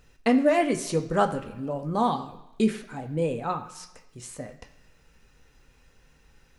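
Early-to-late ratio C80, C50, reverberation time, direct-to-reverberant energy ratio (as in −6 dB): 14.5 dB, 12.0 dB, 1.0 s, 4.0 dB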